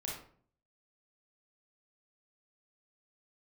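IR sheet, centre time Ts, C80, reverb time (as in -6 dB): 44 ms, 7.5 dB, 0.50 s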